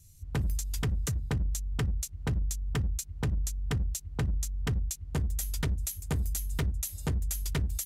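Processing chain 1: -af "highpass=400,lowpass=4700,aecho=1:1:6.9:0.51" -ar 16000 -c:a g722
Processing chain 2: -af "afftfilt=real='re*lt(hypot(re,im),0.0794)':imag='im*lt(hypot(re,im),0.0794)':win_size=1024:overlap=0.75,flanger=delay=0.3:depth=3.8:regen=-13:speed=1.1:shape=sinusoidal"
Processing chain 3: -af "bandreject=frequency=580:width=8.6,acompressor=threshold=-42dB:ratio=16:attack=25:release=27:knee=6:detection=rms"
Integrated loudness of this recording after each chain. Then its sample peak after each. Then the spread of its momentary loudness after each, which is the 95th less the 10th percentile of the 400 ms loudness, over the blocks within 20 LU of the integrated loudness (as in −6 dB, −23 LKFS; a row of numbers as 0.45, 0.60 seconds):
−43.5, −43.5, −44.0 LKFS; −21.5, −23.0, −29.5 dBFS; 4, 6, 2 LU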